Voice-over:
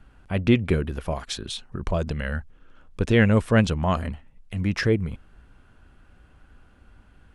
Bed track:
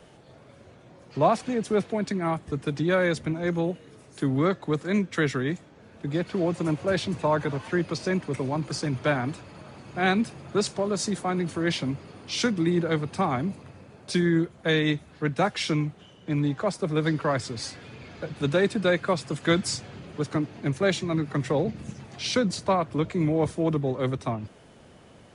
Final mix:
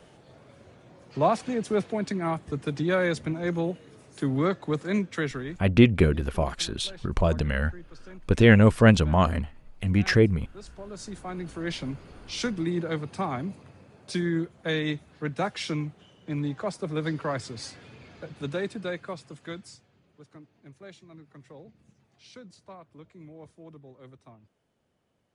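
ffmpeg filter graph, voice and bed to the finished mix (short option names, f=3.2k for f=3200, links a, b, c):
-filter_complex "[0:a]adelay=5300,volume=2dB[a];[1:a]volume=15dB,afade=t=out:st=4.94:d=0.9:silence=0.105925,afade=t=in:st=10.61:d=1.32:silence=0.149624,afade=t=out:st=17.81:d=2.06:silence=0.11885[b];[a][b]amix=inputs=2:normalize=0"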